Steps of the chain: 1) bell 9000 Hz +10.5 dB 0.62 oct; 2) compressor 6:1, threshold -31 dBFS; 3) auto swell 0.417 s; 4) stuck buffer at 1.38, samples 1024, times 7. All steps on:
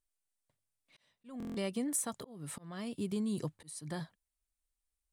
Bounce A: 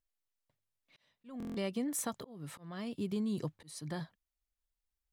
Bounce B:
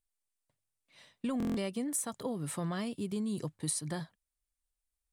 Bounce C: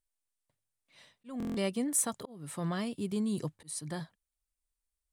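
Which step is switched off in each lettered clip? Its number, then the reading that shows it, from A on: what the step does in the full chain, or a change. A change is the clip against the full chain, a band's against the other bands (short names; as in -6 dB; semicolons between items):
1, 8 kHz band -4.0 dB; 3, crest factor change -2.0 dB; 2, mean gain reduction 2.5 dB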